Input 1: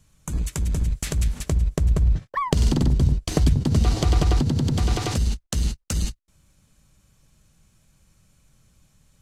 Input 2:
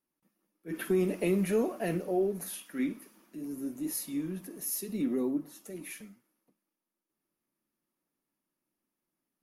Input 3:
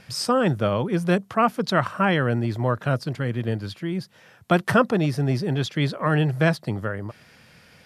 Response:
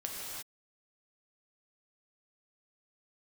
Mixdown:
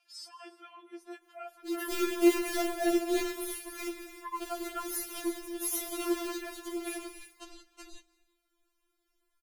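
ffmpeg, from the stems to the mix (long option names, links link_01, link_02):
-filter_complex "[0:a]bass=frequency=250:gain=-10,treble=frequency=4000:gain=-13,adelay=1900,volume=-9.5dB,asplit=2[link_01][link_02];[link_02]volume=-20dB[link_03];[1:a]acrusher=bits=2:mode=log:mix=0:aa=0.000001,adelay=1000,volume=-1dB,asplit=2[link_04][link_05];[link_05]volume=-3.5dB[link_06];[2:a]highpass=frequency=940:poles=1,volume=-17.5dB,asplit=2[link_07][link_08];[link_08]volume=-15dB[link_09];[3:a]atrim=start_sample=2205[link_10];[link_03][link_06][link_09]amix=inputs=3:normalize=0[link_11];[link_11][link_10]afir=irnorm=-1:irlink=0[link_12];[link_01][link_04][link_07][link_12]amix=inputs=4:normalize=0,afftfilt=real='re*4*eq(mod(b,16),0)':imag='im*4*eq(mod(b,16),0)':win_size=2048:overlap=0.75"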